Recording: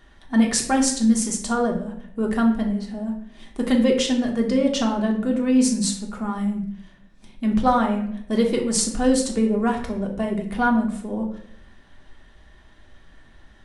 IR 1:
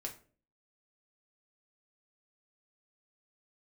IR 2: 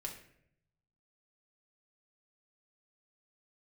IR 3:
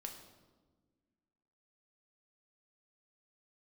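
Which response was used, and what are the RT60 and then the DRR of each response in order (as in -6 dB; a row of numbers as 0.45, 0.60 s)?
2; 0.45, 0.70, 1.4 s; -0.5, 0.0, 2.5 dB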